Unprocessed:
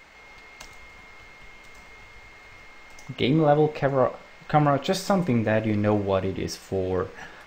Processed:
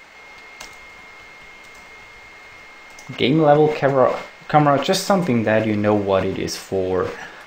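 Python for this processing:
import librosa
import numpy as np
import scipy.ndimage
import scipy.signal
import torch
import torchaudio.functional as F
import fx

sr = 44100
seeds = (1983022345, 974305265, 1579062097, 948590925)

y = fx.low_shelf(x, sr, hz=120.0, db=-11.0)
y = fx.sustainer(y, sr, db_per_s=110.0)
y = y * librosa.db_to_amplitude(6.5)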